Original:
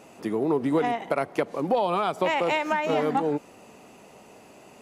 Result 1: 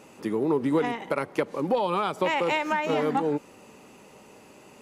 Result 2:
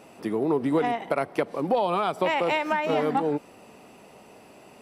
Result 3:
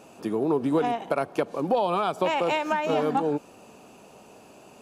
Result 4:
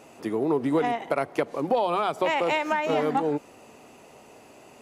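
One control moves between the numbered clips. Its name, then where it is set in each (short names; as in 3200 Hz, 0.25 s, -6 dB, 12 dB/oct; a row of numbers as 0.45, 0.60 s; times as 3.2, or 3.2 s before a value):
notch, frequency: 690, 6700, 2000, 190 Hz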